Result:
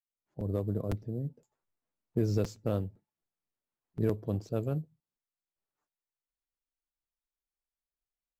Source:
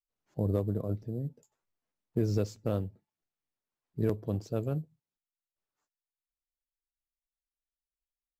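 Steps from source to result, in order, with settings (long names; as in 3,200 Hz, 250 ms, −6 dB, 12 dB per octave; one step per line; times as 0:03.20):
fade in at the beginning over 0.77 s
regular buffer underruns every 0.51 s, samples 256, repeat, from 0:00.40
one half of a high-frequency compander decoder only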